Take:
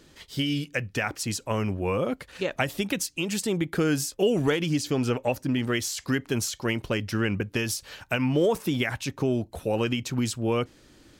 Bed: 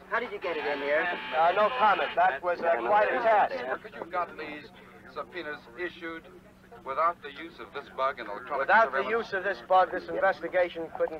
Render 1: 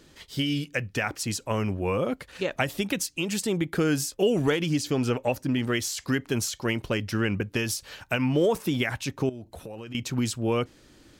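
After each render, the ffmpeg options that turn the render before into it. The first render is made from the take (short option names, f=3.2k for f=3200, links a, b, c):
-filter_complex "[0:a]asettb=1/sr,asplit=3[a][b][c];[a]atrim=end=9.294[d];[b]atrim=start=9.29:end=9.95,asetpts=PTS-STARTPTS,afade=t=in:d=0.004:c=qsin,afade=t=out:st=0.656:d=0.004:c=qsin,acompressor=threshold=-36dB:ratio=8:attack=3.2:release=140:knee=1:detection=peak[e];[c]atrim=start=9.946[f];[d][e]acrossfade=d=0.004:c1=hsin:c2=qsin[g];[g][f]acrossfade=d=0.004:c1=qsin:c2=hsin"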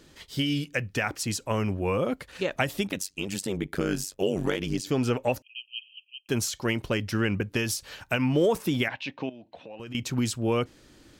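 -filter_complex "[0:a]asplit=3[a][b][c];[a]afade=t=out:st=2.86:d=0.02[d];[b]tremolo=f=96:d=0.919,afade=t=in:st=2.86:d=0.02,afade=t=out:st=4.86:d=0.02[e];[c]afade=t=in:st=4.86:d=0.02[f];[d][e][f]amix=inputs=3:normalize=0,asettb=1/sr,asplit=3[g][h][i];[g]atrim=end=5.424[j];[h]atrim=start=5.42:end=6.29,asetpts=PTS-STARTPTS,afade=t=in:d=0.004:c=qsin,afade=t=out:st=0.866:d=0.004:c=qsin,asuperpass=centerf=2800:order=20:qfactor=3.7[k];[i]atrim=start=6.286[l];[j][k]acrossfade=d=0.004:c1=hsin:c2=qsin[m];[m][l]acrossfade=d=0.004:c1=qsin:c2=hsin,asettb=1/sr,asplit=3[n][o][p];[n]atrim=end=8.884[q];[o]atrim=start=8.88:end=9.8,asetpts=PTS-STARTPTS,afade=t=in:d=0.004:c=qsin,afade=t=out:st=0.916:d=0.004:c=qsin,highpass=270,equalizer=f=390:t=q:w=4:g=-10,equalizer=f=1.3k:t=q:w=4:g=-9,equalizer=f=2.7k:t=q:w=4:g=5,lowpass=f=4k:w=0.5412,lowpass=f=4k:w=1.3066[r];[p]atrim=start=9.796[s];[q][r]acrossfade=d=0.004:c1=hsin:c2=qsin[t];[t][s]acrossfade=d=0.004:c1=qsin:c2=hsin"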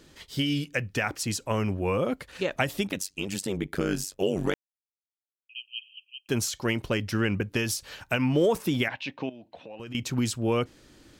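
-filter_complex "[0:a]asplit=3[a][b][c];[a]atrim=end=4.54,asetpts=PTS-STARTPTS,afade=t=out:st=4.536:d=0.004:c=hsin[d];[b]atrim=start=4.54:end=5.49,asetpts=PTS-STARTPTS,volume=0[e];[c]atrim=start=5.49,asetpts=PTS-STARTPTS,afade=t=in:d=0.004:c=hsin[f];[d][e][f]concat=n=3:v=0:a=1"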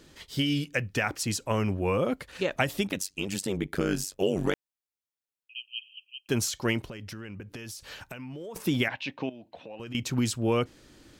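-filter_complex "[0:a]asettb=1/sr,asplit=3[a][b][c];[a]atrim=end=6.804[d];[b]atrim=start=6.8:end=8.56,asetpts=PTS-STARTPTS,afade=t=in:d=0.004:c=qsin,afade=t=out:st=1.756:d=0.004:c=qsin,acompressor=threshold=-37dB:ratio=10:attack=3.2:release=140:knee=1:detection=peak[e];[c]atrim=start=8.556[f];[d][e]acrossfade=d=0.004:c1=hsin:c2=qsin[g];[g][f]acrossfade=d=0.004:c1=qsin:c2=hsin"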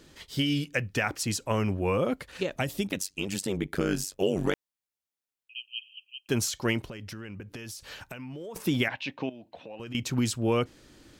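-filter_complex "[0:a]asettb=1/sr,asplit=3[a][b][c];[a]atrim=end=2.434[d];[b]atrim=start=2.43:end=2.92,asetpts=PTS-STARTPTS,afade=t=in:d=0.004:c=qsin,afade=t=out:st=0.486:d=0.004:c=qsin,equalizer=f=1.4k:t=o:w=2.7:g=-6.5[e];[c]atrim=start=2.916[f];[d][e]acrossfade=d=0.004:c1=hsin:c2=qsin[g];[g][f]acrossfade=d=0.004:c1=qsin:c2=hsin"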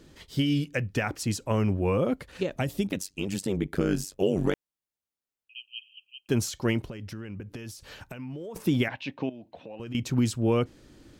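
-af "tiltshelf=f=640:g=3.5"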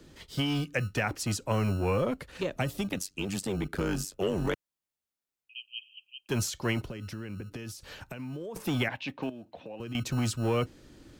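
-filter_complex "[0:a]acrossover=split=130|520|5400[a][b][c][d];[a]acrusher=samples=32:mix=1:aa=0.000001[e];[b]asoftclip=type=tanh:threshold=-30.5dB[f];[e][f][c][d]amix=inputs=4:normalize=0"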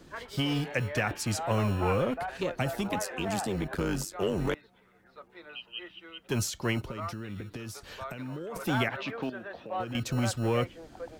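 -filter_complex "[1:a]volume=-12.5dB[a];[0:a][a]amix=inputs=2:normalize=0"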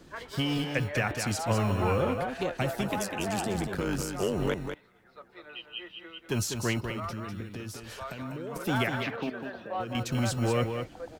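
-af "aecho=1:1:199:0.473"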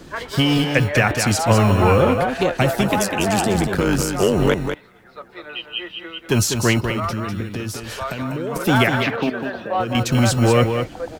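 -af "volume=12dB"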